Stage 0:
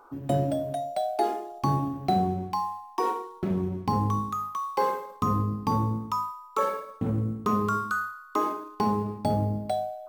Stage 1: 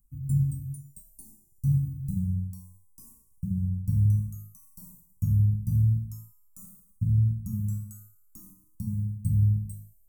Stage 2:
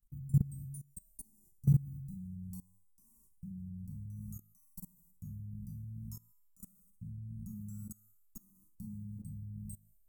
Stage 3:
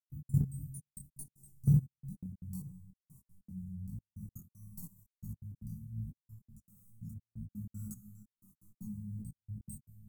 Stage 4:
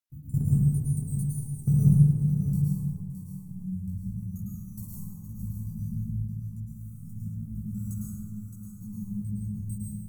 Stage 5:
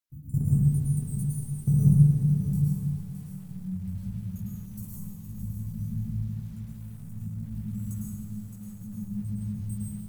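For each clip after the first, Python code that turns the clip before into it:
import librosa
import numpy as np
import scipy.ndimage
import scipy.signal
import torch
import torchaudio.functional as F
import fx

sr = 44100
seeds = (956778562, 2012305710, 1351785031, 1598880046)

y1 = scipy.signal.sosfilt(scipy.signal.cheby2(4, 50, [370.0, 3700.0], 'bandstop', fs=sr, output='sos'), x)
y1 = fx.low_shelf(y1, sr, hz=120.0, db=8.0)
y1 = y1 * librosa.db_to_amplitude(3.0)
y2 = y1 + 0.48 * np.pad(y1, (int(5.1 * sr / 1000.0), 0))[:len(y1)]
y2 = fx.level_steps(y2, sr, step_db=22)
y3 = fx.echo_feedback(y2, sr, ms=466, feedback_pct=26, wet_db=-12.0)
y3 = fx.step_gate(y3, sr, bpm=155, pattern='.x.xxxxx..x', floor_db=-60.0, edge_ms=4.5)
y3 = fx.detune_double(y3, sr, cents=52)
y3 = y3 * librosa.db_to_amplitude(5.5)
y4 = y3 + 10.0 ** (-8.5 / 20.0) * np.pad(y3, (int(617 * sr / 1000.0), 0))[:len(y3)]
y4 = fx.rev_plate(y4, sr, seeds[0], rt60_s=2.1, hf_ratio=0.4, predelay_ms=95, drr_db=-6.5)
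y4 = y4 * librosa.db_to_amplitude(2.0)
y5 = fx.echo_crushed(y4, sr, ms=306, feedback_pct=35, bits=8, wet_db=-13)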